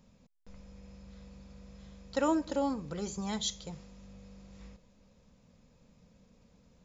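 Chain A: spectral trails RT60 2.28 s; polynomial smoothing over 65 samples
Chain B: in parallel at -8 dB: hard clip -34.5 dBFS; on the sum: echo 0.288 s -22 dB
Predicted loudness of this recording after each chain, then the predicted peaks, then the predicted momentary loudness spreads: -31.5, -32.5 LUFS; -15.5, -17.5 dBFS; 24, 21 LU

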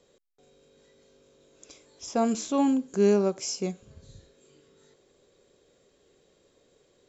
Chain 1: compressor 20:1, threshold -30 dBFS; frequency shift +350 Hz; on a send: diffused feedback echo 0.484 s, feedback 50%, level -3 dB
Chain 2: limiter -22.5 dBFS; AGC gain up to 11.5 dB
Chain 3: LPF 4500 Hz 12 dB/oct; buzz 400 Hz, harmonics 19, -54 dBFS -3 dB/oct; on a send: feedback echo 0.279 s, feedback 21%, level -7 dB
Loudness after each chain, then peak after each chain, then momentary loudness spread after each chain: -35.0, -20.5, -26.0 LUFS; -20.0, -11.0, -11.5 dBFS; 19, 8, 16 LU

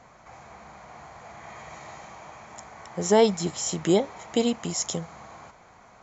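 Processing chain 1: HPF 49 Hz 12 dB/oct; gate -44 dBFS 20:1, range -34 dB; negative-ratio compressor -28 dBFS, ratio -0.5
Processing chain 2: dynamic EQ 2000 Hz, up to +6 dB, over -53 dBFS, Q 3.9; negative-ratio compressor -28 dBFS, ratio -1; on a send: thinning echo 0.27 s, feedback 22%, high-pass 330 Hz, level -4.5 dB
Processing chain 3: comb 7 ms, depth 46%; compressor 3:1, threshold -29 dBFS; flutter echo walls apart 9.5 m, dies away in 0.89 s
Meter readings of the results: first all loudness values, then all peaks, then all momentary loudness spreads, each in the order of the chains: -30.0, -29.5, -32.0 LUFS; -10.0, -9.5, -14.0 dBFS; 19, 17, 17 LU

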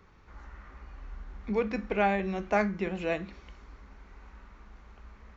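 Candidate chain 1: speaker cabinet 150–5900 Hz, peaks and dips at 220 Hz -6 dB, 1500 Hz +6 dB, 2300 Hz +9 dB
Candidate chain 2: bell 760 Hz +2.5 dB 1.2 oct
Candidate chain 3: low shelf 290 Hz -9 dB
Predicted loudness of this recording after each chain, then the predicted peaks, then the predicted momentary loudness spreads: -29.0, -29.0, -32.5 LUFS; -11.0, -11.5, -14.0 dBFS; 8, 21, 8 LU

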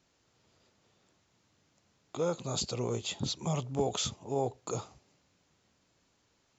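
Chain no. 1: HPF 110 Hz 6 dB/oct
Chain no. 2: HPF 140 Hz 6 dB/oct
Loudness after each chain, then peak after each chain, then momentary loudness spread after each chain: -34.5, -35.0 LUFS; -19.0, -19.0 dBFS; 7, 7 LU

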